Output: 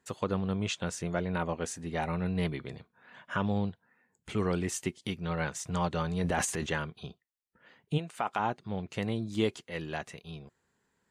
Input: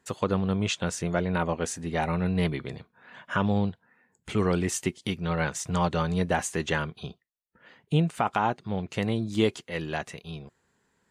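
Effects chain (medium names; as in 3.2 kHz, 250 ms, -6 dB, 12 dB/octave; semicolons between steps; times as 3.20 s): 6.06–6.67 s: transient shaper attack -2 dB, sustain +11 dB; 7.97–8.38 s: high-pass 760 Hz -> 270 Hz 6 dB/octave; trim -5 dB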